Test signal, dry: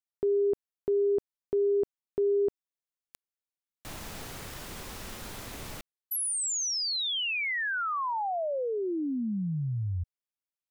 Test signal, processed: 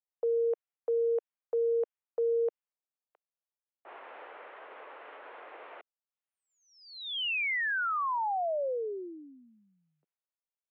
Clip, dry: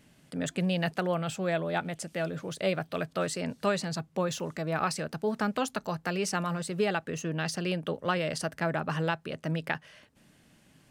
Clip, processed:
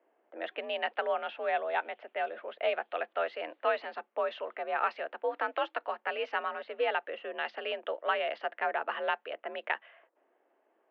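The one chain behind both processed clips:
low-pass that shuts in the quiet parts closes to 790 Hz, open at −25.5 dBFS
single-sideband voice off tune +61 Hz 390–3,100 Hz

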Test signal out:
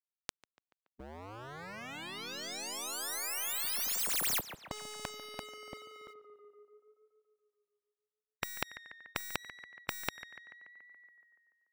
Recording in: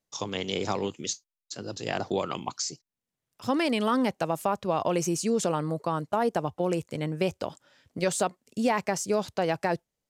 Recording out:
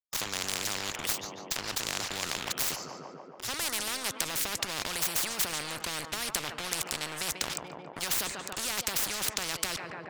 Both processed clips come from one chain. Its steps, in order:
stylus tracing distortion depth 0.03 ms
transient designer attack −2 dB, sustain +8 dB
dead-zone distortion −43 dBFS
on a send: tape delay 143 ms, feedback 71%, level −19 dB, low-pass 2,900 Hz
on the sum: every bin compressed towards the loudest bin 10 to 1
level +9 dB

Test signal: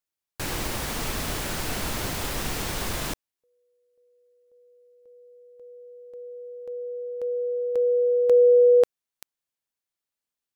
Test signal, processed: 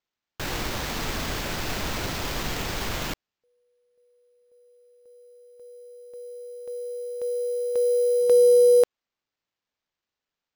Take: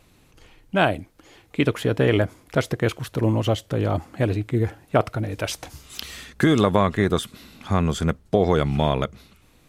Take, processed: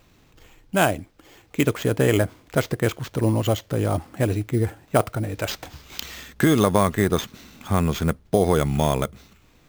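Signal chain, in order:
sample-rate reduction 9,900 Hz, jitter 0%

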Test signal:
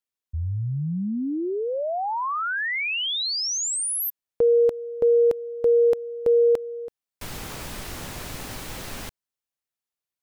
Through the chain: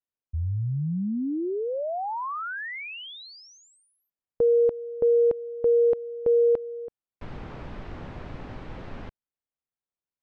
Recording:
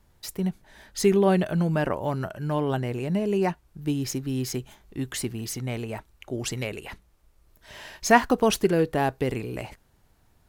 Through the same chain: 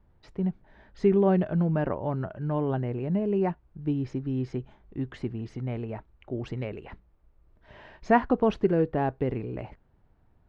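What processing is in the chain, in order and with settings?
head-to-tape spacing loss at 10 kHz 44 dB

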